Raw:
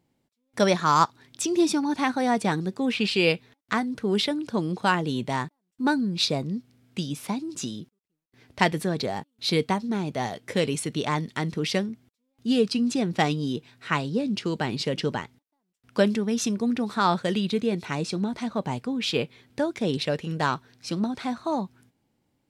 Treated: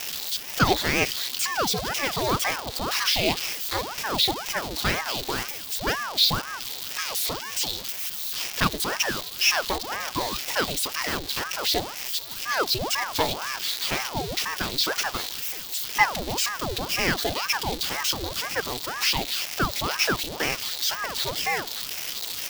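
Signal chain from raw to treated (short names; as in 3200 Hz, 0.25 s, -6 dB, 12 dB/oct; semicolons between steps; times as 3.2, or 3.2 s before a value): switching spikes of -14 dBFS; fifteen-band EQ 630 Hz +11 dB, 4000 Hz +12 dB, 10000 Hz -6 dB; ring modulator with a swept carrier 790 Hz, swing 85%, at 2 Hz; gain -4 dB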